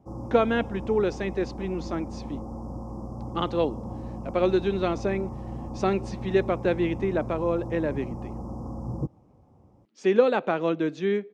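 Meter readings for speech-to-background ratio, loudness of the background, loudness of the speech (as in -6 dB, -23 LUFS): 10.0 dB, -37.0 LUFS, -27.0 LUFS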